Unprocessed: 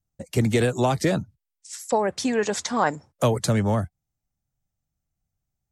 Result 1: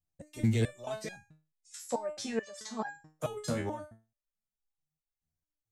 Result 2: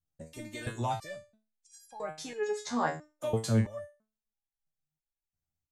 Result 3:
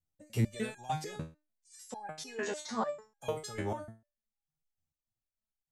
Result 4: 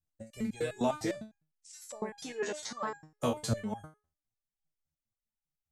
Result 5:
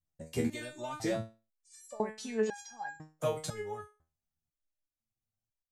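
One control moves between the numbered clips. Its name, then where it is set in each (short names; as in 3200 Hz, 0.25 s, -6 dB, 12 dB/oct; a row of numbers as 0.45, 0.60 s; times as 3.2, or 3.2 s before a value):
stepped resonator, rate: 4.6, 3, 6.7, 9.9, 2 Hz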